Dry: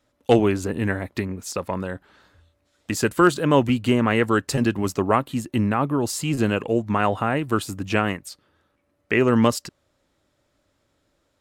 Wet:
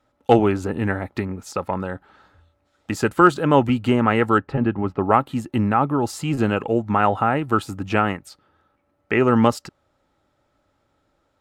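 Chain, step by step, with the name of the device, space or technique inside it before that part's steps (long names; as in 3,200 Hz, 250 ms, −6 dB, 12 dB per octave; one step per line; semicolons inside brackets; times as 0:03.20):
0:04.38–0:05.03: high-frequency loss of the air 460 metres
inside a helmet (high-shelf EQ 4,100 Hz −9 dB; hollow resonant body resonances 830/1,300 Hz, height 9 dB, ringing for 30 ms)
level +1 dB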